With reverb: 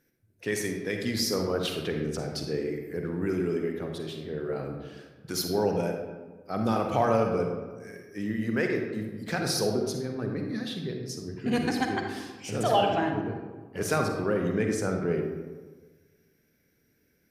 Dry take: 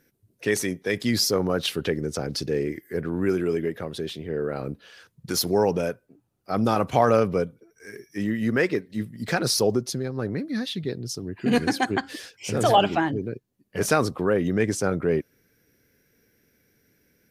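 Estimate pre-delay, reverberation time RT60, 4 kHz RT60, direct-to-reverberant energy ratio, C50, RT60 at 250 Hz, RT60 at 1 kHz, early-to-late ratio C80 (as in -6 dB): 40 ms, 1.4 s, 0.75 s, 2.5 dB, 3.5 dB, 1.5 s, 1.3 s, 6.0 dB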